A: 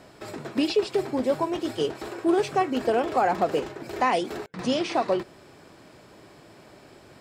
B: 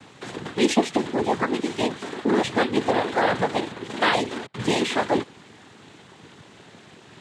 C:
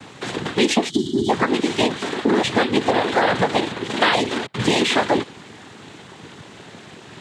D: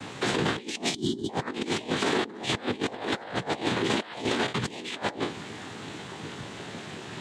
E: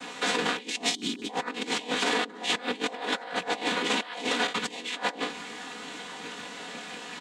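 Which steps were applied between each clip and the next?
EQ curve 230 Hz 0 dB, 660 Hz -5 dB, 2300 Hz +4 dB, 4800 Hz -2 dB; noise vocoder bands 6; gain +4.5 dB
spectral gain 0.9–1.3, 420–2900 Hz -24 dB; compressor, threshold -21 dBFS, peak gain reduction 8.5 dB; dynamic EQ 3400 Hz, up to +3 dB, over -44 dBFS, Q 0.87; gain +7 dB
spectral trails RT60 0.32 s; negative-ratio compressor -24 dBFS, ratio -0.5; gain -5.5 dB
rattling part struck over -38 dBFS, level -32 dBFS; HPF 570 Hz 6 dB/oct; comb 4.1 ms, depth 92%

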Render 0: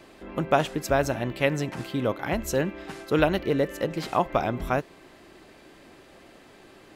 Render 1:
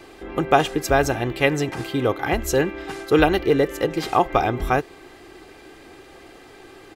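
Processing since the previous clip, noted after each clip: comb 2.5 ms, depth 51%; gain +5 dB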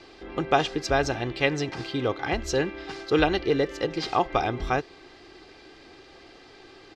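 synth low-pass 4900 Hz, resonance Q 2.3; gain -5.5 dB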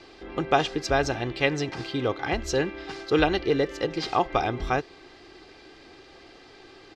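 nothing audible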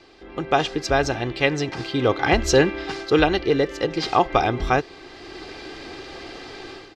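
AGC gain up to 14.5 dB; gain -2 dB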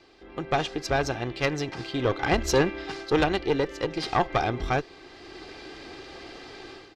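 tube stage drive 10 dB, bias 0.7; gain -1.5 dB

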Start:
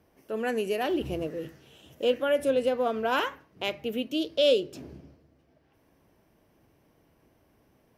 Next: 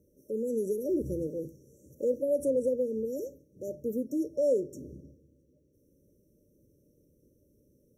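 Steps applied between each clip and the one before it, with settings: in parallel at +2 dB: limiter -21 dBFS, peak gain reduction 8.5 dB; on the sum: FFT band-reject 610–5500 Hz; gain -7.5 dB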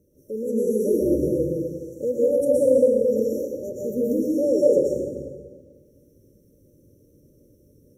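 plate-style reverb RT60 1.6 s, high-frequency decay 0.7×, pre-delay 0.105 s, DRR -6 dB; gain +3 dB

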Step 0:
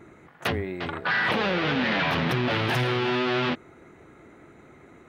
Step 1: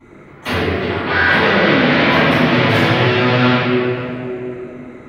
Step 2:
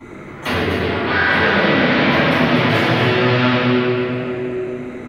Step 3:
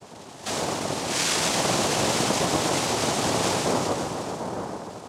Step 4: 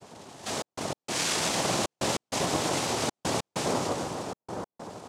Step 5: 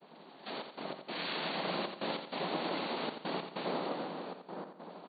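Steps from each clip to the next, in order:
reverb RT60 3.1 s, pre-delay 3 ms, DRR -18.5 dB; gain -11 dB
on a send: loudspeakers at several distances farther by 37 m -11 dB, 84 m -7 dB; on the sum: three-band squash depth 40%; gain -3 dB
noise vocoder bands 2; gain -9 dB
step gate "xxxx.x.x" 97 bpm -60 dB; gain -4 dB
brick-wall FIR band-pass 150–4600 Hz; on a send: feedback echo 86 ms, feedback 42%, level -8 dB; on the sum: gain -7.5 dB

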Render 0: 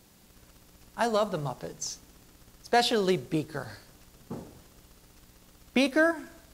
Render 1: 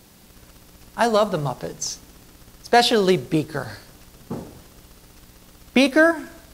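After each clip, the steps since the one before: bell 7100 Hz -2.5 dB 0.2 oct; gain +8 dB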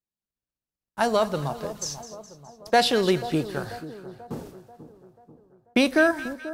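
gate -39 dBFS, range -44 dB; split-band echo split 1100 Hz, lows 0.488 s, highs 0.209 s, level -14 dB; gain -4 dB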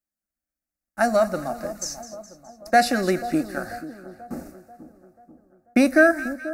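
fixed phaser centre 650 Hz, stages 8; gain +4.5 dB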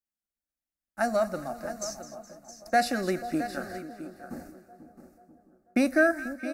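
echo 0.666 s -12.5 dB; gain -6.5 dB

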